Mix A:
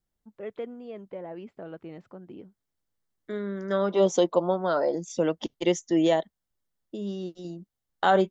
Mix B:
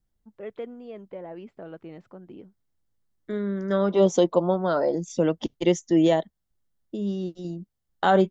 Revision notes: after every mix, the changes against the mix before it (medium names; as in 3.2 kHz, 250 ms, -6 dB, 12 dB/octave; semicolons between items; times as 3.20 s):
second voice: add bass shelf 240 Hz +9.5 dB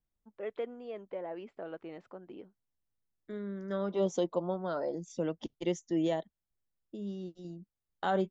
first voice: add tone controls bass -12 dB, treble -2 dB; second voice -11.0 dB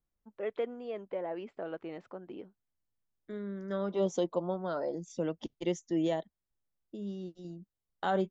first voice +3.0 dB